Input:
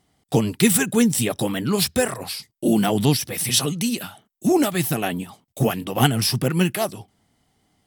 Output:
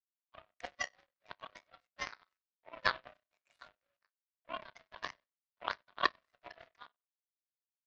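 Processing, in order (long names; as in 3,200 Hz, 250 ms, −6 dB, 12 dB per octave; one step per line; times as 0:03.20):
spectral magnitudes quantised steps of 30 dB
in parallel at −2.5 dB: downward compressor, threshold −28 dBFS, peak gain reduction 15.5 dB
on the sum: amplitude tremolo 1.4 Hz, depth 42%
slack as between gear wheels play −26.5 dBFS
phaser with its sweep stopped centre 1,200 Hz, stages 4
resonators tuned to a chord C2 major, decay 0.29 s
repeating echo 95 ms, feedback 50%, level −14.5 dB
convolution reverb, pre-delay 7 ms, DRR 20.5 dB
single-sideband voice off tune +320 Hz 360–2,900 Hz
power curve on the samples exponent 3
0:05.04–0:05.67: multiband upward and downward compressor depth 40%
level +15 dB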